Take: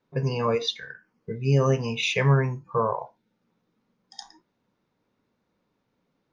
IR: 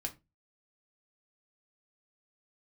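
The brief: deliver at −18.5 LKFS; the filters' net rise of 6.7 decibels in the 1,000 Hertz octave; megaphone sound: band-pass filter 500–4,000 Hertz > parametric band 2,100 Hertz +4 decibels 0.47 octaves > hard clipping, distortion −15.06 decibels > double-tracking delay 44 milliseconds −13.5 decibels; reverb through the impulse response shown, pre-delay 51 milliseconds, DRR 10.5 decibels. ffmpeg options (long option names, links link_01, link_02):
-filter_complex "[0:a]equalizer=frequency=1000:width_type=o:gain=7.5,asplit=2[link_01][link_02];[1:a]atrim=start_sample=2205,adelay=51[link_03];[link_02][link_03]afir=irnorm=-1:irlink=0,volume=-10.5dB[link_04];[link_01][link_04]amix=inputs=2:normalize=0,highpass=500,lowpass=4000,equalizer=frequency=2100:width_type=o:width=0.47:gain=4,asoftclip=type=hard:threshold=-16.5dB,asplit=2[link_05][link_06];[link_06]adelay=44,volume=-13.5dB[link_07];[link_05][link_07]amix=inputs=2:normalize=0,volume=8dB"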